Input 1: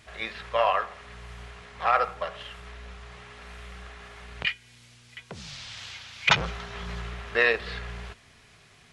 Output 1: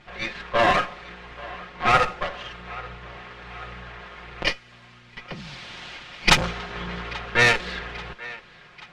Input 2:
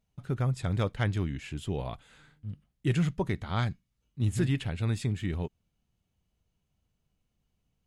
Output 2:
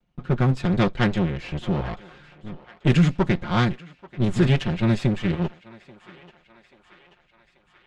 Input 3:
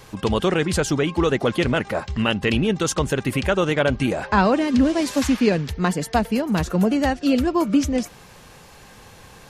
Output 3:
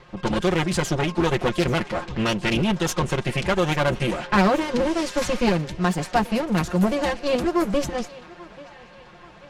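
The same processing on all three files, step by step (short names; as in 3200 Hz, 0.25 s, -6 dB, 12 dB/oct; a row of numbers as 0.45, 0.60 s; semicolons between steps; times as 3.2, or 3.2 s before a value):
minimum comb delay 5.6 ms; thinning echo 0.835 s, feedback 66%, high-pass 540 Hz, level -17.5 dB; low-pass opened by the level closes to 2900 Hz, open at -16 dBFS; match loudness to -23 LUFS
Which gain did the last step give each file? +6.5, +10.0, -1.0 dB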